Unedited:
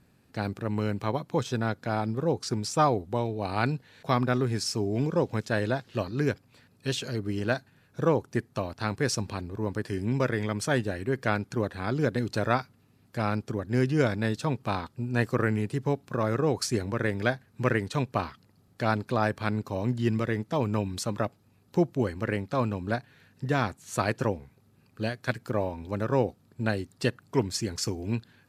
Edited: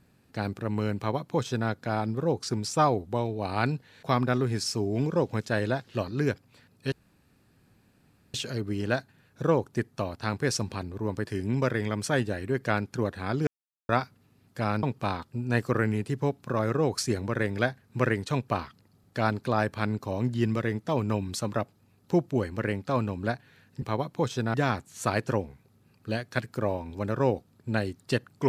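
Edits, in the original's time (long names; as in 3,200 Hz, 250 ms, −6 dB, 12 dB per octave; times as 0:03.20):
0:00.97–0:01.69: duplicate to 0:23.46
0:06.92: splice in room tone 1.42 s
0:12.05–0:12.47: silence
0:13.41–0:14.47: remove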